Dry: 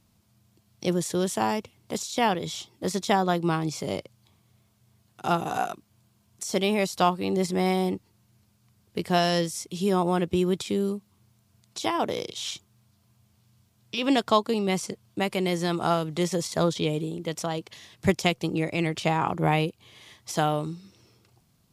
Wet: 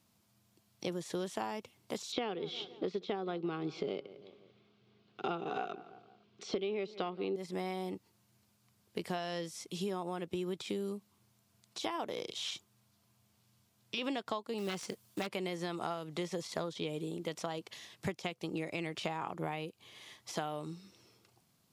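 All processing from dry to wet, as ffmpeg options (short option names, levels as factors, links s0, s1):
-filter_complex "[0:a]asettb=1/sr,asplit=3[s0][s1][s2];[s0]atrim=end=2.124[s3];[s1]atrim=start=2.12:end=7.36,asetpts=PTS-STARTPTS,afade=t=in:d=0.004:c=qsin,afade=t=out:st=5.236:d=0.004:c=qsin,acontrast=67,highpass=150,equalizer=f=410:t=q:w=4:g=9,equalizer=f=620:t=q:w=4:g=-5,equalizer=f=950:t=q:w=4:g=-9,equalizer=f=1800:t=q:w=4:g=-7,lowpass=f=3800:w=0.5412,lowpass=f=3800:w=1.3066,asplit=2[s4][s5];[s5]adelay=169,lowpass=f=2800:p=1,volume=0.075,asplit=2[s6][s7];[s7]adelay=169,lowpass=f=2800:p=1,volume=0.46,asplit=2[s8][s9];[s9]adelay=169,lowpass=f=2800:p=1,volume=0.46[s10];[s4][s6][s8][s10]amix=inputs=4:normalize=0,atrim=end_sample=231084[s11];[s2]atrim=start=7.356[s12];[s3][s11]acrossfade=d=0.004:c1=hsin:c2=qsin[s13];[s13][s12]acrossfade=d=0.004:c1=qsin:c2=hsin,asettb=1/sr,asplit=3[s14][s15][s16];[s14]atrim=end=14.584[s17];[s15]atrim=start=14.58:end=15.27,asetpts=PTS-STARTPTS,afade=t=in:d=0.004:c=qsin,afade=t=out:st=0.686:d=0.004:c=qsin,highshelf=f=5900:g=11.5,acrusher=bits=4:mode=log:mix=0:aa=0.000001,aeval=exprs='(mod(6.68*val(0)+1,2)-1)/6.68':c=same[s18];[s16]atrim=start=15.266[s19];[s17][s18]acrossfade=d=0.004:c1=hsin:c2=qsin[s20];[s20][s19]acrossfade=d=0.004:c1=qsin:c2=hsin,acrossover=split=4400[s21][s22];[s22]acompressor=threshold=0.00631:ratio=4:attack=1:release=60[s23];[s21][s23]amix=inputs=2:normalize=0,highpass=f=250:p=1,acompressor=threshold=0.0316:ratio=12,volume=0.708"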